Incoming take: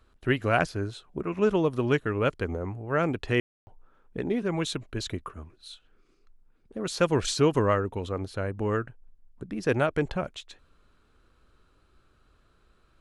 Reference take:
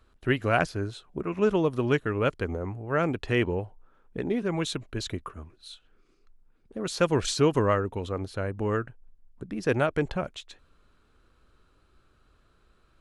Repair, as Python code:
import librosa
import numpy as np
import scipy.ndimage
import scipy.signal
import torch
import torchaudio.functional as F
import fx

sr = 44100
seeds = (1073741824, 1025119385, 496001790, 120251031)

y = fx.fix_ambience(x, sr, seeds[0], print_start_s=12.41, print_end_s=12.91, start_s=3.4, end_s=3.67)